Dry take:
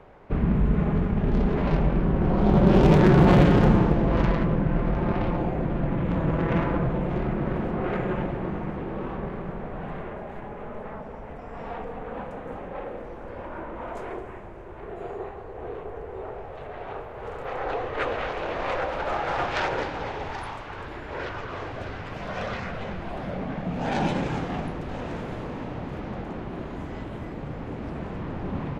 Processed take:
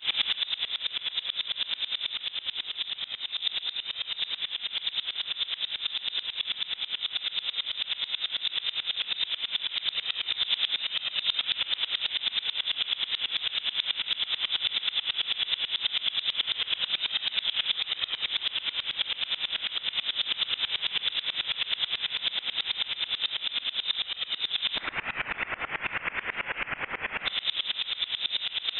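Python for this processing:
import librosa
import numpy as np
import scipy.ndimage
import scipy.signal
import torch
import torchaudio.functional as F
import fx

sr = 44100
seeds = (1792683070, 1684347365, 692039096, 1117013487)

y = fx.bin_compress(x, sr, power=0.2)
y = fx.hum_notches(y, sr, base_hz=50, count=5)
y = fx.spec_gate(y, sr, threshold_db=-20, keep='weak', at=(24.73, 27.25), fade=0.02)
y = scipy.signal.sosfilt(scipy.signal.butter(2, 67.0, 'highpass', fs=sr, output='sos'), y)
y = fx.low_shelf(y, sr, hz=120.0, db=-9.0)
y = fx.over_compress(y, sr, threshold_db=-23.0, ratio=-1.0)
y = fx.chorus_voices(y, sr, voices=2, hz=0.71, base_ms=19, depth_ms=4.5, mix_pct=70)
y = fx.room_flutter(y, sr, wall_m=8.0, rt60_s=0.56)
y = fx.freq_invert(y, sr, carrier_hz=3800)
y = fx.tremolo_decay(y, sr, direction='swelling', hz=9.2, depth_db=25)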